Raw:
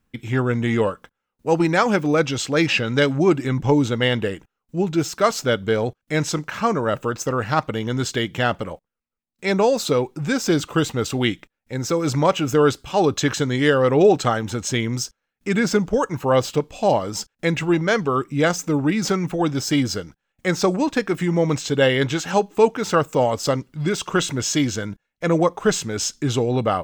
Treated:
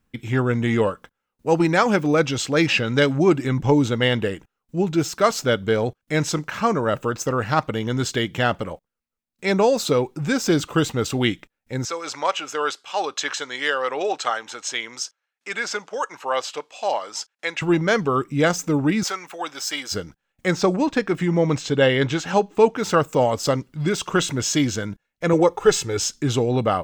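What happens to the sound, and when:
0:11.85–0:17.62: band-pass filter 790–7,800 Hz
0:19.03–0:19.92: high-pass filter 850 Hz
0:20.53–0:22.77: parametric band 15,000 Hz −11 dB 1.1 octaves
0:25.33–0:26.00: comb filter 2.3 ms

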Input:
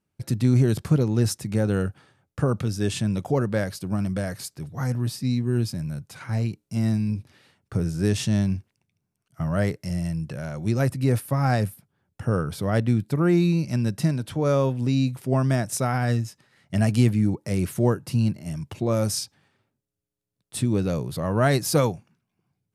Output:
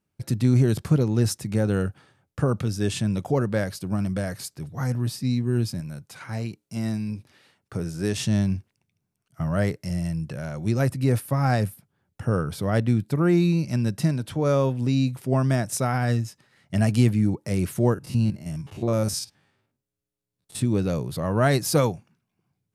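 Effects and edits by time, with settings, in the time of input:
0:05.80–0:08.17: low-shelf EQ 180 Hz −8.5 dB
0:17.94–0:20.62: spectrum averaged block by block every 50 ms

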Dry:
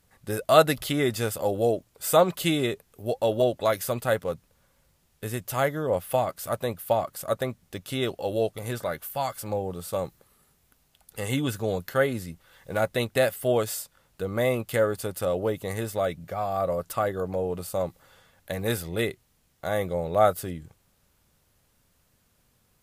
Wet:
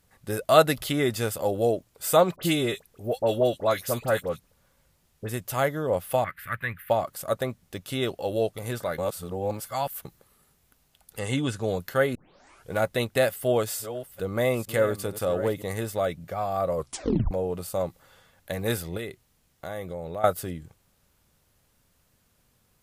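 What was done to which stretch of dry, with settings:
0:02.36–0:05.29: all-pass dispersion highs, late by 58 ms, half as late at 1,900 Hz
0:06.24–0:06.90: drawn EQ curve 120 Hz 0 dB, 700 Hz −19 dB, 1,800 Hz +15 dB, 6,100 Hz −22 dB, 13,000 Hz −6 dB
0:08.98–0:10.05: reverse
0:11.19–0:11.62: low-pass filter 9,500 Hz 24 dB per octave
0:12.15: tape start 0.58 s
0:13.28–0:15.62: delay that plays each chunk backwards 458 ms, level −11.5 dB
0:16.75: tape stop 0.56 s
0:18.97–0:20.24: downward compressor 3 to 1, threshold −33 dBFS

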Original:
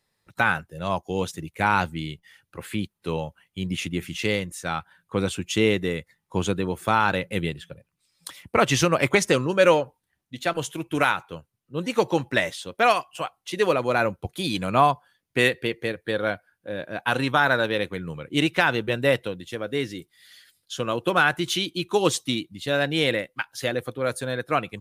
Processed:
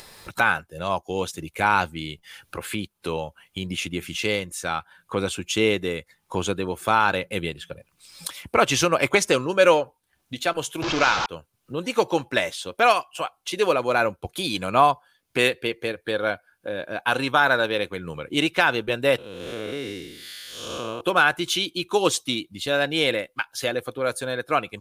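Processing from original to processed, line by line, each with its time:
0:10.82–0:11.26: linear delta modulator 32 kbit/s, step −19.5 dBFS
0:19.18–0:21.01: spectrum smeared in time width 262 ms
whole clip: parametric band 140 Hz −7.5 dB 1.9 octaves; notch filter 1,900 Hz, Q 10; upward compression, threshold −27 dBFS; level +2 dB

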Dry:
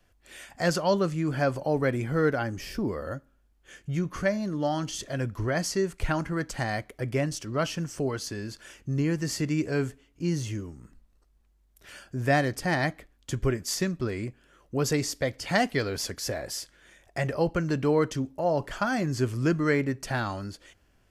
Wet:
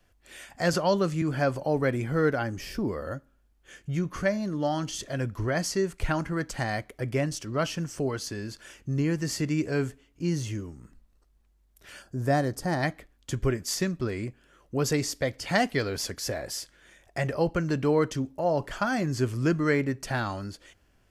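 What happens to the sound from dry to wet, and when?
0:00.73–0:01.22: multiband upward and downward compressor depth 40%
0:12.02–0:12.83: parametric band 2,500 Hz −11.5 dB 1.2 octaves

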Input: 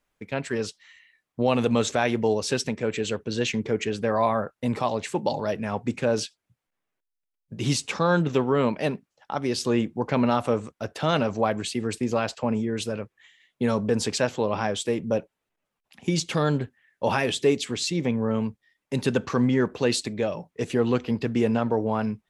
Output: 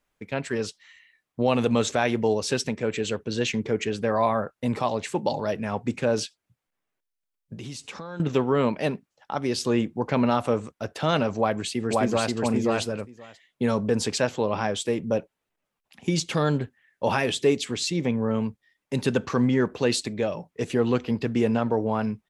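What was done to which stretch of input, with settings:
0:07.56–0:08.20: downward compressor 4 to 1, threshold −36 dBFS
0:11.37–0:12.34: delay throw 530 ms, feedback 10%, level −1 dB

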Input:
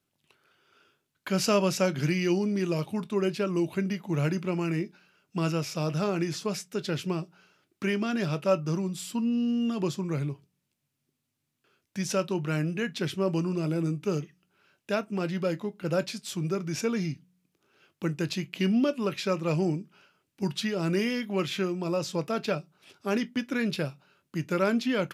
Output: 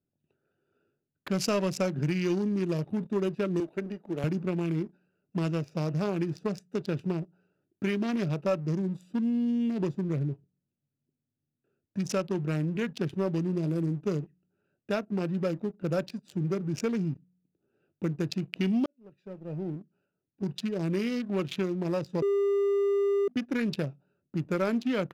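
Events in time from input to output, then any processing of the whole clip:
0:03.60–0:04.24: high-pass filter 340 Hz
0:18.86–0:21.34: fade in
0:22.22–0:23.28: beep over 400 Hz −20.5 dBFS
whole clip: adaptive Wiener filter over 41 samples; leveller curve on the samples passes 1; downward compressor 2 to 1, threshold −28 dBFS

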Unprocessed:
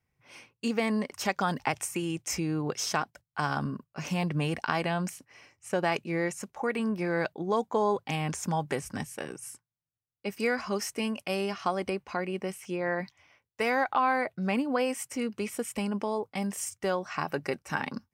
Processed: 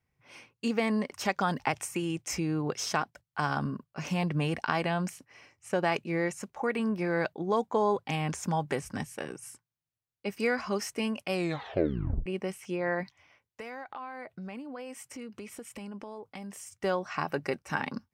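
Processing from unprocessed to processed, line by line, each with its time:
0:11.32: tape stop 0.94 s
0:13.03–0:16.80: downward compressor 4 to 1, threshold −40 dBFS
whole clip: high-shelf EQ 6,600 Hz −5 dB

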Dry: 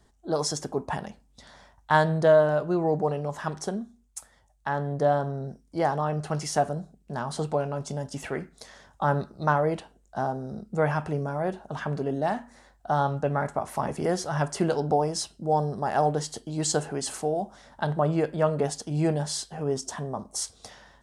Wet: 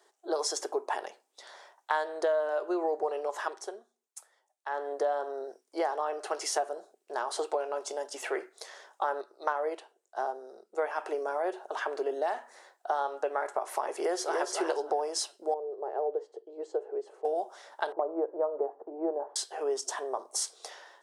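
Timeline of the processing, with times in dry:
0:03.41–0:04.92: duck −8.5 dB, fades 0.23 s
0:09.21–0:10.98: expander for the loud parts, over −33 dBFS
0:13.98–0:14.50: delay throw 290 ms, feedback 15%, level −3.5 dB
0:15.54–0:17.25: resonant band-pass 450 Hz, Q 3.4
0:17.92–0:19.36: inverse Chebyshev low-pass filter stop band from 4,300 Hz, stop band 70 dB
whole clip: elliptic high-pass filter 370 Hz, stop band 60 dB; downward compressor 4 to 1, threshold −29 dBFS; level +2 dB

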